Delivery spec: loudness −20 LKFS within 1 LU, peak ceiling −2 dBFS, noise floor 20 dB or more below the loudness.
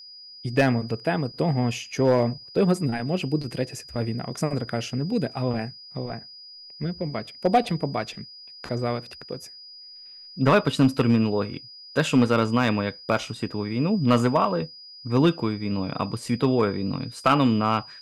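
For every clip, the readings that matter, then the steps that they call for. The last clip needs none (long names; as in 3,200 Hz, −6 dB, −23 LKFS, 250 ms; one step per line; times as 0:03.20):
share of clipped samples 0.2%; peaks flattened at −11.0 dBFS; interfering tone 4,900 Hz; level of the tone −42 dBFS; integrated loudness −24.5 LKFS; sample peak −11.0 dBFS; target loudness −20.0 LKFS
→ clipped peaks rebuilt −11 dBFS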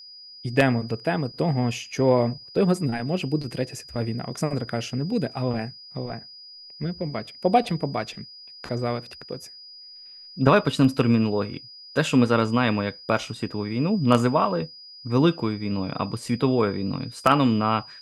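share of clipped samples 0.0%; interfering tone 4,900 Hz; level of the tone −42 dBFS
→ notch filter 4,900 Hz, Q 30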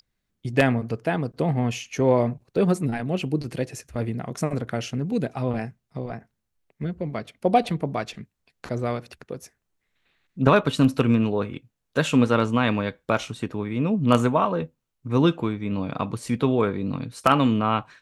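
interfering tone none found; integrated loudness −24.5 LKFS; sample peak −2.0 dBFS; target loudness −20.0 LKFS
→ level +4.5 dB
brickwall limiter −2 dBFS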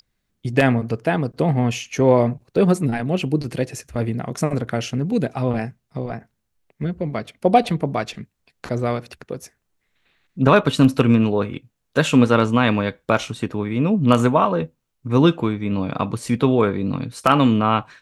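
integrated loudness −20.0 LKFS; sample peak −2.0 dBFS; background noise floor −74 dBFS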